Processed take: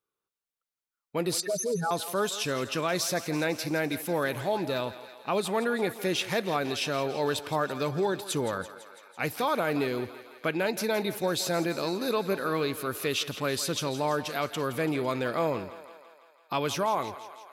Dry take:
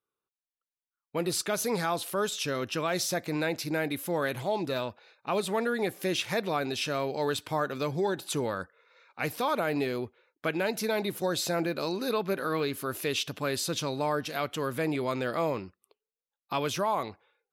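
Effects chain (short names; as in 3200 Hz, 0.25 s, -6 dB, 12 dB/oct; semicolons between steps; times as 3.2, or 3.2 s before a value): 1.4–1.91 spectral contrast raised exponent 3.7; on a send: thinning echo 0.167 s, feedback 68%, high-pass 380 Hz, level -13.5 dB; on the sum: gain +1 dB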